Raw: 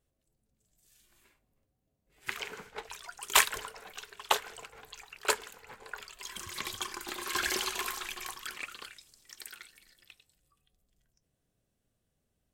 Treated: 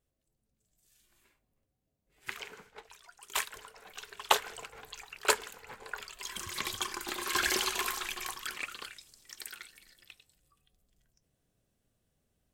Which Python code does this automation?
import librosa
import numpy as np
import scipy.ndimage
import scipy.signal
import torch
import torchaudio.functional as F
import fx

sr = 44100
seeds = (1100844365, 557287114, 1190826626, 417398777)

y = fx.gain(x, sr, db=fx.line((2.28, -3.0), (2.93, -10.0), (3.57, -10.0), (4.13, 2.0)))